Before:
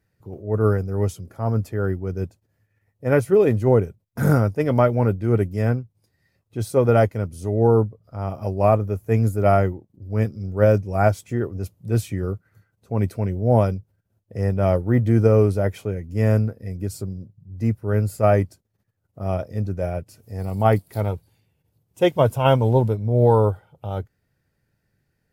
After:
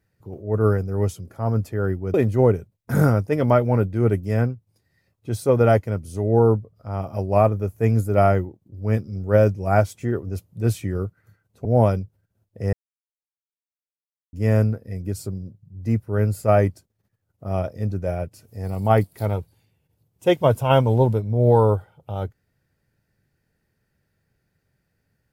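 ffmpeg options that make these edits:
-filter_complex "[0:a]asplit=5[a][b][c][d][e];[a]atrim=end=2.142[f];[b]atrim=start=3.418:end=12.932[g];[c]atrim=start=13.398:end=14.48,asetpts=PTS-STARTPTS,afade=t=out:st=1.078:d=0.004:c=hsin[h];[d]atrim=start=14.48:end=16.08,asetpts=PTS-STARTPTS,volume=0[i];[e]atrim=start=16.08,asetpts=PTS-STARTPTS,afade=t=in:d=0.004:c=hsin[j];[f][g]acrossfade=d=0.004:c1=hsin:c2=hsin[k];[h][i][j]concat=n=3:v=0:a=1[l];[k][l]acrossfade=d=0.004:c1=hsin:c2=hsin"

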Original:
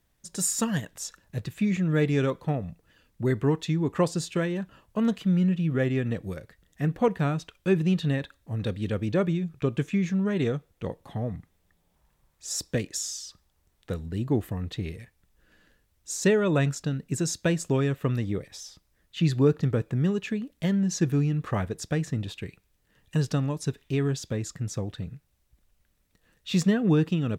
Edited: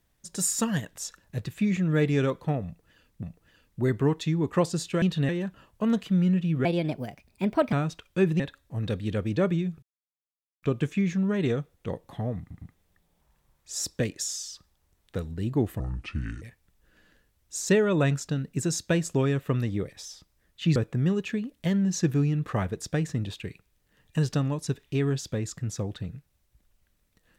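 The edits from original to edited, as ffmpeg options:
-filter_complex "[0:a]asplit=13[a][b][c][d][e][f][g][h][i][j][k][l][m];[a]atrim=end=3.232[n];[b]atrim=start=2.648:end=4.442[o];[c]atrim=start=7.888:end=8.162[p];[d]atrim=start=4.438:end=5.804[q];[e]atrim=start=5.8:end=7.22,asetpts=PTS-STARTPTS,asetrate=58212,aresample=44100[r];[f]atrim=start=7.216:end=7.892[s];[g]atrim=start=8.158:end=9.59,asetpts=PTS-STARTPTS,afade=t=out:st=1.428:d=0.004:c=hsin,apad=pad_dur=0.8[t];[h]atrim=start=9.59:end=11.472,asetpts=PTS-STARTPTS,afade=t=in:d=0.004:c=hsin[u];[i]atrim=start=11.358:end=11.472[v];[j]atrim=start=11.358:end=14.544[w];[k]atrim=start=14.54:end=14.97,asetpts=PTS-STARTPTS,asetrate=30429,aresample=44100[x];[l]atrim=start=14.966:end=19.312[y];[m]atrim=start=19.738[z];[n][o]acrossfade=d=0.004:c1=hsin:c2=hsin[aa];[aa][p]acrossfade=d=0.004:c1=hsin:c2=hsin[ab];[ab][q]acrossfade=d=0.004:c1=hsin:c2=hsin[ac];[ac][r]acrossfade=d=0.004:c1=hsin:c2=hsin[ad];[ad][s]acrossfade=d=0.004:c1=hsin:c2=hsin[ae];[t][u]concat=n=2:v=0:a=1[af];[ae][af]acrossfade=d=0.004:c1=hsin:c2=hsin[ag];[ag][v]acrossfade=d=0.004:c1=hsin:c2=hsin[ah];[ah][w]acrossfade=d=0.004:c1=hsin:c2=hsin[ai];[ai][x]acrossfade=d=0.004:c1=hsin:c2=hsin[aj];[aj][y]acrossfade=d=0.004:c1=hsin:c2=hsin[ak];[ak][z]acrossfade=d=0.004:c1=hsin:c2=hsin"

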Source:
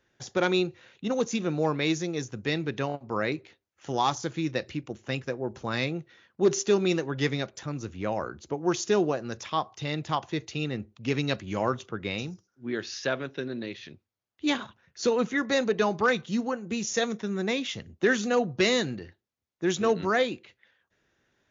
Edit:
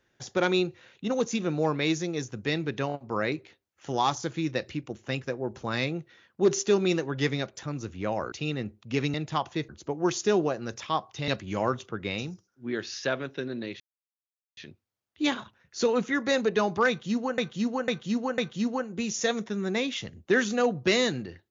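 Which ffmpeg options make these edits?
-filter_complex "[0:a]asplit=9[a][b][c][d][e][f][g][h][i];[a]atrim=end=8.322[j];[b]atrim=start=10.458:end=11.282[k];[c]atrim=start=9.908:end=10.462[l];[d]atrim=start=8.318:end=9.912[m];[e]atrim=start=11.278:end=13.8,asetpts=PTS-STARTPTS,afade=t=out:st=2.518:d=0.004:c=hsin,apad=pad_dur=0.77[n];[f]atrim=start=13.8:end=16.612,asetpts=PTS-STARTPTS,afade=t=in:d=0.004:c=hsin[o];[g]atrim=start=16.108:end=16.612[p];[h]atrim=start=16.108:end=16.612[q];[i]atrim=start=16.108[r];[j][k]acrossfade=d=0.004:c1=hsin:c2=hsin[s];[s][l]acrossfade=d=0.004:c1=hsin:c2=hsin[t];[t][m]acrossfade=d=0.004:c1=hsin:c2=hsin[u];[n][o]concat=n=2:v=0:a=1[v];[u][v]acrossfade=d=0.004:c1=hsin:c2=hsin[w];[w][p]acrossfade=d=0.004:c1=hsin:c2=hsin[x];[x][q]acrossfade=d=0.004:c1=hsin:c2=hsin[y];[y][r]acrossfade=d=0.004:c1=hsin:c2=hsin"

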